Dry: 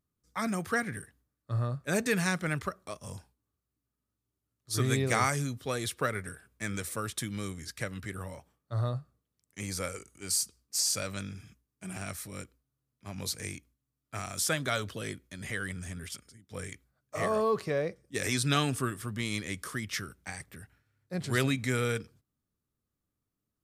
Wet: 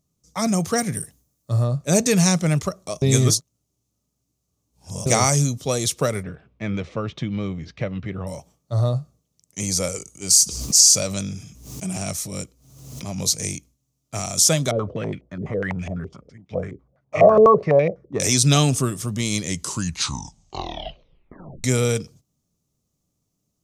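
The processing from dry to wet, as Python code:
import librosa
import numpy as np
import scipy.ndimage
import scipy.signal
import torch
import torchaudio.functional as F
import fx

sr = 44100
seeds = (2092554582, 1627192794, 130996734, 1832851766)

y = fx.high_shelf(x, sr, hz=9000.0, db=12.0, at=(0.78, 1.64))
y = fx.lowpass(y, sr, hz=3000.0, slope=24, at=(6.23, 8.27))
y = fx.pre_swell(y, sr, db_per_s=58.0, at=(10.41, 13.13))
y = fx.filter_held_lowpass(y, sr, hz=12.0, low_hz=400.0, high_hz=2400.0, at=(14.71, 18.2))
y = fx.edit(y, sr, fx.reverse_span(start_s=3.02, length_s=2.04),
    fx.tape_stop(start_s=19.44, length_s=2.2), tone=tone)
y = fx.graphic_eq_15(y, sr, hz=(160, 630, 1600, 6300), db=(7, 5, -11, 12))
y = y * librosa.db_to_amplitude(8.0)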